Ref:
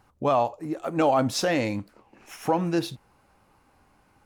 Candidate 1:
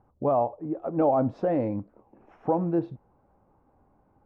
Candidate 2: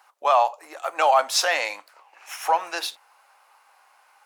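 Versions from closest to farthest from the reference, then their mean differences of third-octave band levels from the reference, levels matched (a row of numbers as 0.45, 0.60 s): 1, 2; 7.5, 9.5 dB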